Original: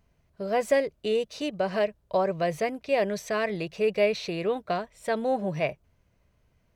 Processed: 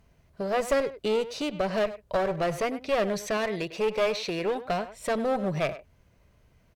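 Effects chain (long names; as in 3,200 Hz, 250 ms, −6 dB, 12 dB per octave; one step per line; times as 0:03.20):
0:03.37–0:04.65: low-shelf EQ 160 Hz −10 dB
in parallel at −0.5 dB: downward compressor, threshold −38 dBFS, peak gain reduction 19 dB
on the sum: asymmetric clip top −26 dBFS
far-end echo of a speakerphone 100 ms, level −13 dB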